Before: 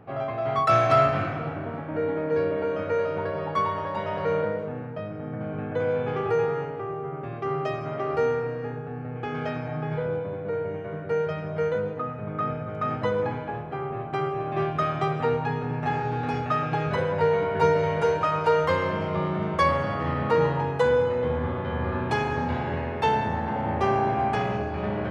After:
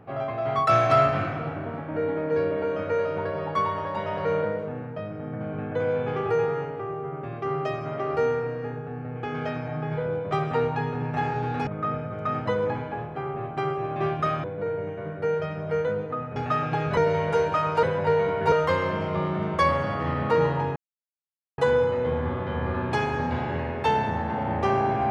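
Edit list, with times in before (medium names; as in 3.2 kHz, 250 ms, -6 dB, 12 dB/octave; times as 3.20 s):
10.31–12.23 s: swap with 15.00–16.36 s
16.97–17.66 s: move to 18.52 s
20.76 s: insert silence 0.82 s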